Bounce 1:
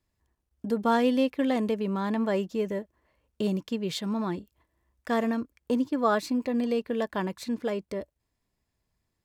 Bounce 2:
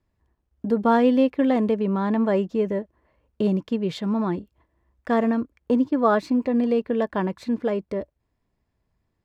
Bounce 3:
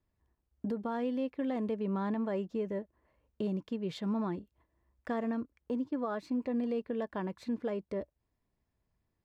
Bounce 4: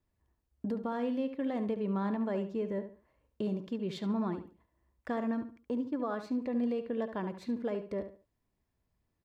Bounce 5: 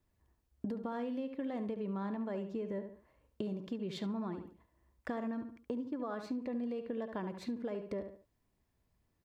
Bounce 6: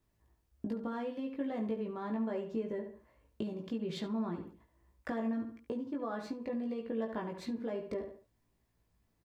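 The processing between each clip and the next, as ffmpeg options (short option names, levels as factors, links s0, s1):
-af "lowpass=f=1500:p=1,volume=2"
-af "alimiter=limit=0.112:level=0:latency=1:release=453,volume=0.447"
-filter_complex "[0:a]asplit=2[s0][s1];[s1]adelay=71,lowpass=f=4500:p=1,volume=0.316,asplit=2[s2][s3];[s3]adelay=71,lowpass=f=4500:p=1,volume=0.29,asplit=2[s4][s5];[s5]adelay=71,lowpass=f=4500:p=1,volume=0.29[s6];[s0][s2][s4][s6]amix=inputs=4:normalize=0"
-af "acompressor=threshold=0.0126:ratio=6,volume=1.33"
-filter_complex "[0:a]asplit=2[s0][s1];[s1]adelay=18,volume=0.708[s2];[s0][s2]amix=inputs=2:normalize=0"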